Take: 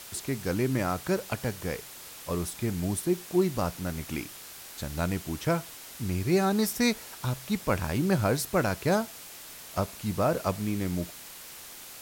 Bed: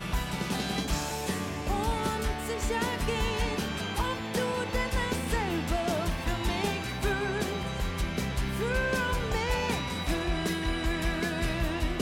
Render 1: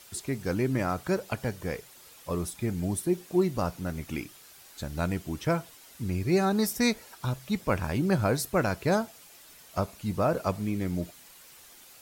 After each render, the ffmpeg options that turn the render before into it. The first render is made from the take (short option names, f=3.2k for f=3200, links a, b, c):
-af "afftdn=nr=9:nf=-45"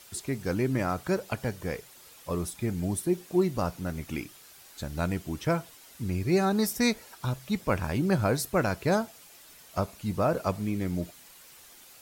-af anull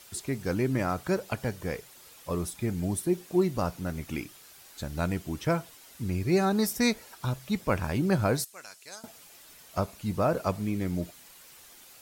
-filter_complex "[0:a]asettb=1/sr,asplit=3[a][b][c];[a]atrim=end=8.444[d];[b]atrim=start=8.44:end=9.04,asetpts=PTS-STARTPTS,afade=t=in:d=0.004:c=qsin,afade=t=out:st=0.596:d=0.004:c=qsin,bandpass=f=7.8k:t=q:w=1.1[e];[c]atrim=start=9.036[f];[d][e]acrossfade=d=0.004:c1=hsin:c2=qsin[g];[g][f]acrossfade=d=0.004:c1=qsin:c2=hsin"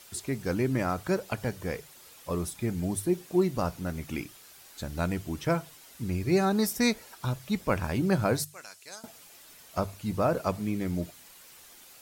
-af "bandreject=f=50:t=h:w=6,bandreject=f=100:t=h:w=6,bandreject=f=150:t=h:w=6"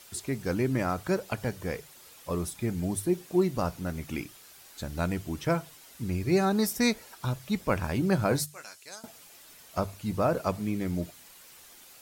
-filter_complex "[0:a]asettb=1/sr,asplit=3[a][b][c];[a]atrim=end=8.294[d];[b]atrim=start=8.29:end=8.82,asetpts=PTS-STARTPTS,afade=t=in:d=0.004:c=qsin,afade=t=out:st=0.526:d=0.004:c=qsin,asplit=2[e][f];[f]adelay=14,volume=-7dB[g];[e][g]amix=inputs=2:normalize=0,atrim=end_sample=23373[h];[c]atrim=start=8.816[i];[d][h]acrossfade=d=0.004:c1=hsin:c2=qsin[j];[j][i]acrossfade=d=0.004:c1=qsin:c2=hsin"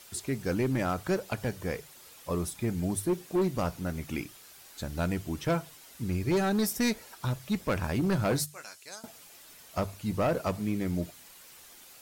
-af "asoftclip=type=hard:threshold=-22dB"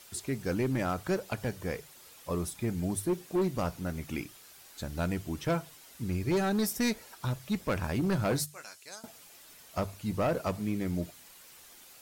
-af "volume=-1.5dB"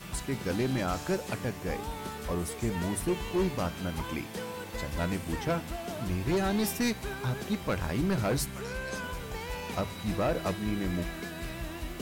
-filter_complex "[1:a]volume=-8.5dB[a];[0:a][a]amix=inputs=2:normalize=0"